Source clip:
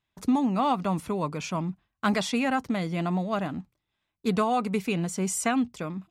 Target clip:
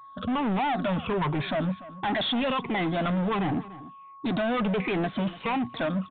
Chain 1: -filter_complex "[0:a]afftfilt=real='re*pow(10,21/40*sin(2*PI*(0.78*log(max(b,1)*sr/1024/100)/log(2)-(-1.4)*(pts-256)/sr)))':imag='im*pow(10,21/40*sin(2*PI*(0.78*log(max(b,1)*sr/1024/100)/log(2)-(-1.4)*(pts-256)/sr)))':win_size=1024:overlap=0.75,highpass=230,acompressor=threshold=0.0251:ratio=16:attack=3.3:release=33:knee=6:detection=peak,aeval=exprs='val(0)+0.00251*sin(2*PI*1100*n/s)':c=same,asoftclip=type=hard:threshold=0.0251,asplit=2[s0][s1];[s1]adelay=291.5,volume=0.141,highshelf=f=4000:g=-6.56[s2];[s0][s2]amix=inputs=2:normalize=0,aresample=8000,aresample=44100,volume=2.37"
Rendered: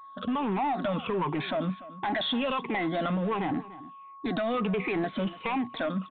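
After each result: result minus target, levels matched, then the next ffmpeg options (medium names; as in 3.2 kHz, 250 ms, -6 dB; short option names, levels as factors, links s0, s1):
compression: peak gain reduction +7 dB; 125 Hz band -2.5 dB
-filter_complex "[0:a]afftfilt=real='re*pow(10,21/40*sin(2*PI*(0.78*log(max(b,1)*sr/1024/100)/log(2)-(-1.4)*(pts-256)/sr)))':imag='im*pow(10,21/40*sin(2*PI*(0.78*log(max(b,1)*sr/1024/100)/log(2)-(-1.4)*(pts-256)/sr)))':win_size=1024:overlap=0.75,highpass=230,acompressor=threshold=0.0596:ratio=16:attack=3.3:release=33:knee=6:detection=peak,aeval=exprs='val(0)+0.00251*sin(2*PI*1100*n/s)':c=same,asoftclip=type=hard:threshold=0.0251,asplit=2[s0][s1];[s1]adelay=291.5,volume=0.141,highshelf=f=4000:g=-6.56[s2];[s0][s2]amix=inputs=2:normalize=0,aresample=8000,aresample=44100,volume=2.37"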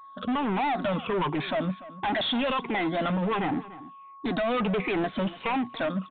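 125 Hz band -3.0 dB
-filter_complex "[0:a]afftfilt=real='re*pow(10,21/40*sin(2*PI*(0.78*log(max(b,1)*sr/1024/100)/log(2)-(-1.4)*(pts-256)/sr)))':imag='im*pow(10,21/40*sin(2*PI*(0.78*log(max(b,1)*sr/1024/100)/log(2)-(-1.4)*(pts-256)/sr)))':win_size=1024:overlap=0.75,highpass=96,acompressor=threshold=0.0596:ratio=16:attack=3.3:release=33:knee=6:detection=peak,aeval=exprs='val(0)+0.00251*sin(2*PI*1100*n/s)':c=same,asoftclip=type=hard:threshold=0.0251,asplit=2[s0][s1];[s1]adelay=291.5,volume=0.141,highshelf=f=4000:g=-6.56[s2];[s0][s2]amix=inputs=2:normalize=0,aresample=8000,aresample=44100,volume=2.37"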